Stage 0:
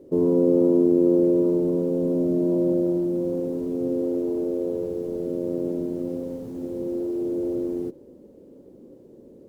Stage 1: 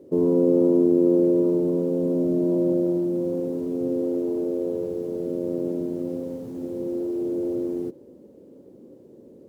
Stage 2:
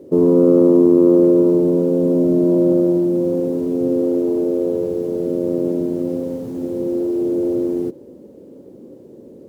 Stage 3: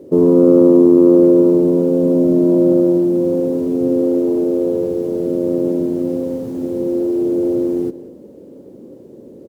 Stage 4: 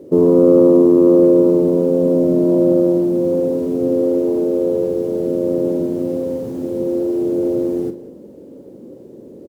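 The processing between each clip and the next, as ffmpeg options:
-af "highpass=75"
-af "acontrast=35,volume=2dB"
-filter_complex "[0:a]asplit=2[a][b];[b]adelay=186.6,volume=-16dB,highshelf=f=4k:g=-4.2[c];[a][c]amix=inputs=2:normalize=0,volume=2dB"
-filter_complex "[0:a]asplit=2[a][b];[b]adelay=44,volume=-10.5dB[c];[a][c]amix=inputs=2:normalize=0"

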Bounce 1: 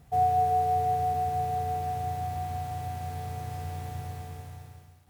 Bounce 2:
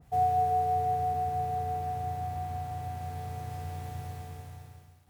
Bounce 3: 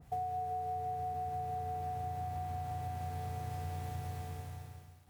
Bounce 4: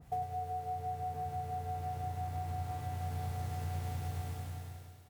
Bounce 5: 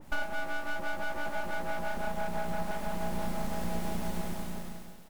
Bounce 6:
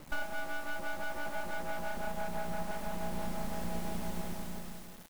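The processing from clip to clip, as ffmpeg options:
-af "adynamicequalizer=threshold=0.00562:dfrequency=2100:dqfactor=0.7:tfrequency=2100:tqfactor=0.7:attack=5:release=100:ratio=0.375:range=2:mode=cutabove:tftype=highshelf,volume=-2dB"
-af "acompressor=threshold=-35dB:ratio=12"
-af "aecho=1:1:100|200|300|400|500|600|700|800:0.562|0.332|0.196|0.115|0.0681|0.0402|0.0237|0.014,volume=1dB"
-af "aeval=exprs='abs(val(0))':c=same,volume=7.5dB"
-af "acrusher=bits=7:mix=0:aa=0.000001,volume=-3.5dB"

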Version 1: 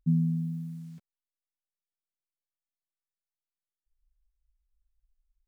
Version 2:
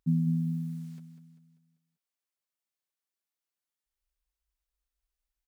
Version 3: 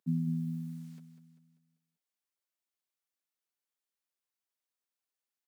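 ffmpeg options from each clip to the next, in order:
-filter_complex "[0:a]highpass=f=240:p=1,asplit=2[a][b];[b]aecho=0:1:196|392|588|784|980:0.299|0.14|0.0659|0.031|0.0146[c];[a][c]amix=inputs=2:normalize=0,volume=3dB"
-af "highpass=f=170:w=0.5412,highpass=f=170:w=1.3066,volume=-2dB"

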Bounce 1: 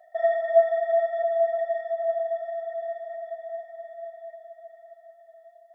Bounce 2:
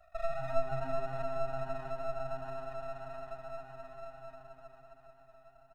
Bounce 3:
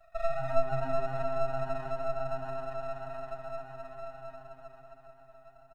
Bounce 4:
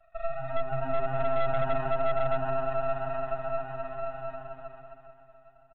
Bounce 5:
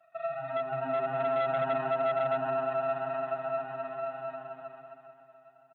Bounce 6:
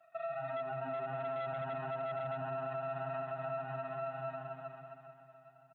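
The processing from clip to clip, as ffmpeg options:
-filter_complex "[0:a]aeval=exprs='max(val(0),0)':c=same,asplit=6[a][b][c][d][e][f];[b]adelay=129,afreqshift=130,volume=-14dB[g];[c]adelay=258,afreqshift=260,volume=-20.2dB[h];[d]adelay=387,afreqshift=390,volume=-26.4dB[i];[e]adelay=516,afreqshift=520,volume=-32.6dB[j];[f]adelay=645,afreqshift=650,volume=-38.8dB[k];[a][g][h][i][j][k]amix=inputs=6:normalize=0,acrossover=split=500[l][m];[m]acompressor=threshold=-38dB:ratio=2[n];[l][n]amix=inputs=2:normalize=0,volume=-4dB"
-af "aecho=1:1:7.5:0.65"
-af "dynaudnorm=f=200:g=11:m=10dB,aresample=8000,volume=18.5dB,asoftclip=hard,volume=-18.5dB,aresample=44100,volume=-2dB"
-af "highpass=f=160:w=0.5412,highpass=f=160:w=1.3066"
-af "asubboost=boost=7.5:cutoff=130,alimiter=level_in=6.5dB:limit=-24dB:level=0:latency=1:release=112,volume=-6.5dB,volume=-1dB"

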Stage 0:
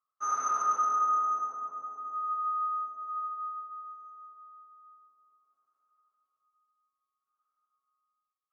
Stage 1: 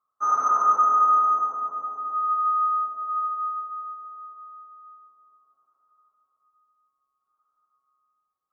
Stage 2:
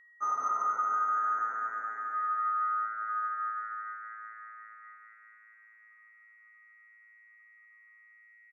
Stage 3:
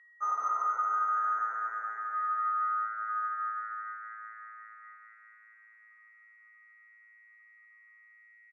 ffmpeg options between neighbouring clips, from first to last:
-af "acontrast=47,highshelf=f=1.6k:t=q:w=1.5:g=-11,bandreject=f=60:t=h:w=6,bandreject=f=120:t=h:w=6,volume=2dB"
-filter_complex "[0:a]acompressor=threshold=-21dB:ratio=6,aeval=exprs='val(0)+0.00316*sin(2*PI*1900*n/s)':c=same,asplit=2[a][b];[b]asplit=7[c][d][e][f][g][h][i];[c]adelay=235,afreqshift=110,volume=-11.5dB[j];[d]adelay=470,afreqshift=220,volume=-15.7dB[k];[e]adelay=705,afreqshift=330,volume=-19.8dB[l];[f]adelay=940,afreqshift=440,volume=-24dB[m];[g]adelay=1175,afreqshift=550,volume=-28.1dB[n];[h]adelay=1410,afreqshift=660,volume=-32.3dB[o];[i]adelay=1645,afreqshift=770,volume=-36.4dB[p];[j][k][l][m][n][o][p]amix=inputs=7:normalize=0[q];[a][q]amix=inputs=2:normalize=0,volume=-6.5dB"
-af "highpass=490,lowpass=5.7k"

